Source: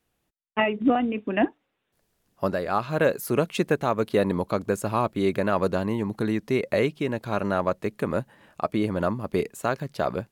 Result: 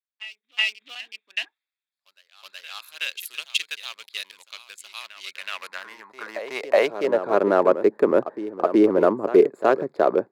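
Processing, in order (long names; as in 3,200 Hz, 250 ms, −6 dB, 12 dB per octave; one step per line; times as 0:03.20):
adaptive Wiener filter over 15 samples
high-pass filter sweep 3,000 Hz → 370 Hz, 0:05.31–0:07.44
in parallel at −1.5 dB: brickwall limiter −15.5 dBFS, peak gain reduction 7.5 dB
on the sum: backwards echo 372 ms −11 dB
multiband upward and downward expander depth 40%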